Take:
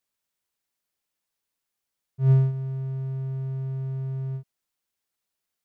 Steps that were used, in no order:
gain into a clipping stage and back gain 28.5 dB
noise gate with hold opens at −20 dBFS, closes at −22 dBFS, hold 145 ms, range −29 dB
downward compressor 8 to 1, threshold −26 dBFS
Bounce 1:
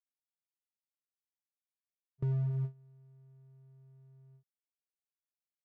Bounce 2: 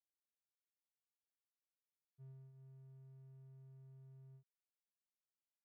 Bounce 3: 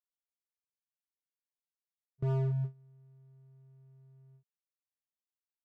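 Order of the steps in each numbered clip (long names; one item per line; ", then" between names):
noise gate with hold, then downward compressor, then gain into a clipping stage and back
downward compressor, then noise gate with hold, then gain into a clipping stage and back
noise gate with hold, then gain into a clipping stage and back, then downward compressor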